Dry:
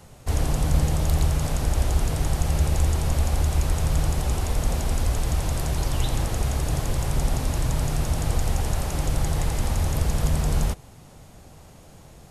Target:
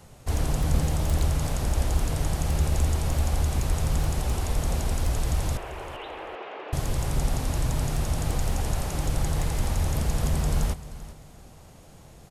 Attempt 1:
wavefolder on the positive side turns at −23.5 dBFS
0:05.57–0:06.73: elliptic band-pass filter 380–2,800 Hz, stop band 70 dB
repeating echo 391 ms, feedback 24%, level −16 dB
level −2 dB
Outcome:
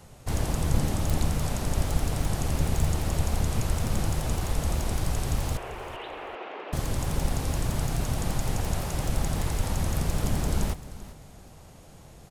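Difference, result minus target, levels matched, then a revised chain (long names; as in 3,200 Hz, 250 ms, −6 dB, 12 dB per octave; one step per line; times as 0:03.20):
wavefolder on the positive side: distortion +14 dB
wavefolder on the positive side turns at −16 dBFS
0:05.57–0:06.73: elliptic band-pass filter 380–2,800 Hz, stop band 70 dB
repeating echo 391 ms, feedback 24%, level −16 dB
level −2 dB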